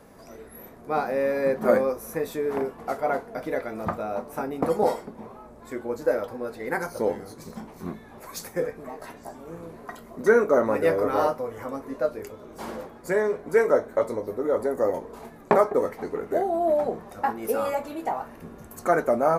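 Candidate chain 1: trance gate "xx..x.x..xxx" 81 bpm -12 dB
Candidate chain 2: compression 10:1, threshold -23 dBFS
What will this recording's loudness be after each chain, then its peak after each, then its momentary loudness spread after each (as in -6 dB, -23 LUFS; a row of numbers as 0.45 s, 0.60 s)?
-28.0 LUFS, -31.0 LUFS; -3.0 dBFS, -8.5 dBFS; 21 LU, 13 LU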